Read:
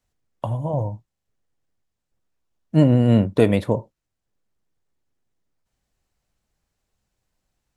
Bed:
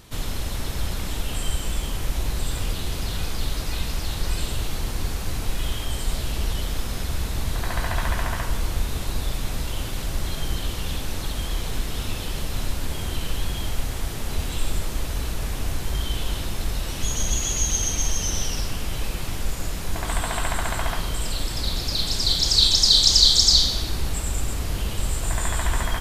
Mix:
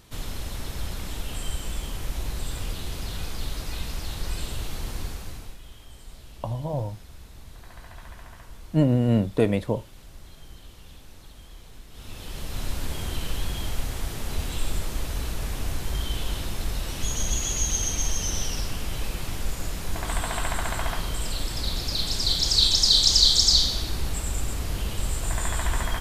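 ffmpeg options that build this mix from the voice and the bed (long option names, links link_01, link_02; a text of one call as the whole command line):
ffmpeg -i stem1.wav -i stem2.wav -filter_complex "[0:a]adelay=6000,volume=-5dB[link_01];[1:a]volume=11.5dB,afade=type=out:start_time=4.97:duration=0.62:silence=0.199526,afade=type=in:start_time=11.9:duration=0.87:silence=0.149624[link_02];[link_01][link_02]amix=inputs=2:normalize=0" out.wav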